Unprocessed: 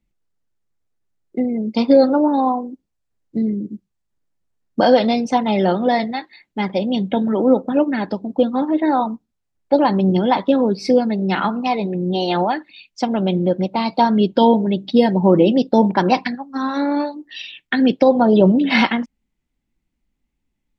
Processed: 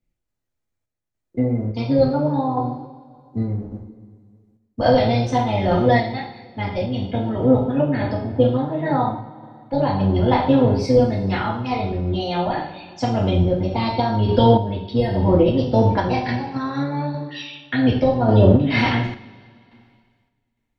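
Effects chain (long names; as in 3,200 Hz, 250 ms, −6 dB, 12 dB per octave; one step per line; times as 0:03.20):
sub-octave generator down 1 octave, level 0 dB
coupled-rooms reverb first 0.5 s, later 2 s, from −17 dB, DRR −5 dB
sample-and-hold tremolo
level −5.5 dB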